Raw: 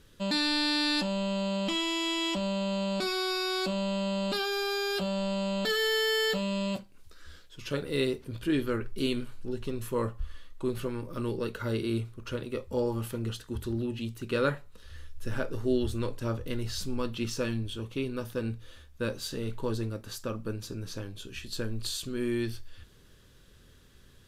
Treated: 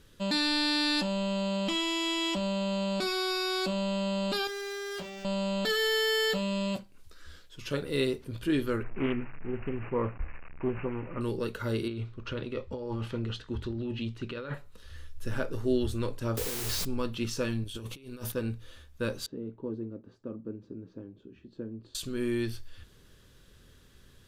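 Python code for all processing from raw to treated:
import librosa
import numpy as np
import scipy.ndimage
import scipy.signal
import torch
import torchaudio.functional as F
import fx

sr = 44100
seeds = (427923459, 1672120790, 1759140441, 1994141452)

y = fx.chain(x, sr, fx.tube_stage(drive_db=36.0, bias=0.55),
    fx.doubler(ms=18.0, db=-5),
    fx.resample_linear(factor=2), at=(4.47, 5.25))
y = fx.chain(y, sr, fx.delta_mod(bps=64000, step_db=-41.5),
    fx.resample_bad(factor=8, down='none', up='filtered'),
    fx.doppler_dist(depth_ms=0.17), at=(8.83, 11.21))
y = fx.chain(y, sr, fx.over_compress(threshold_db=-33.0, ratio=-1.0),
    fx.cheby1_lowpass(hz=3600.0, order=2), at=(11.88, 14.54))
y = fx.chain(y, sr, fx.peak_eq(hz=430.0, db=12.0, octaves=0.62),
    fx.over_compress(threshold_db=-35.0, ratio=-1.0),
    fx.quant_dither(seeds[0], bits=6, dither='triangular'), at=(16.37, 16.85))
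y = fx.chain(y, sr, fx.high_shelf(hz=4500.0, db=9.5),
    fx.over_compress(threshold_db=-39.0, ratio=-0.5),
    fx.overload_stage(gain_db=29.0), at=(17.64, 18.32))
y = fx.chain(y, sr, fx.bandpass_q(hz=280.0, q=1.5),
    fx.air_absorb(metres=57.0), at=(19.26, 21.95))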